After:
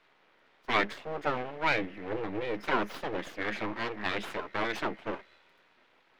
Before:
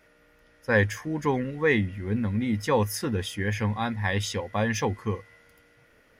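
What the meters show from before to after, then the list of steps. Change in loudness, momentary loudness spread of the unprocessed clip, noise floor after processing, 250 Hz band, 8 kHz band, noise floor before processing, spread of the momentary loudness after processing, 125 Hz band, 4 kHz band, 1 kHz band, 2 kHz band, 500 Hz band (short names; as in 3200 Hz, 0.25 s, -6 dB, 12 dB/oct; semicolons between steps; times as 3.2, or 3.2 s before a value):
-6.0 dB, 6 LU, -66 dBFS, -9.5 dB, -17.0 dB, -60 dBFS, 8 LU, -18.0 dB, -2.5 dB, -1.0 dB, -3.5 dB, -6.5 dB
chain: full-wave rectifier; three-band isolator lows -14 dB, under 230 Hz, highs -19 dB, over 4300 Hz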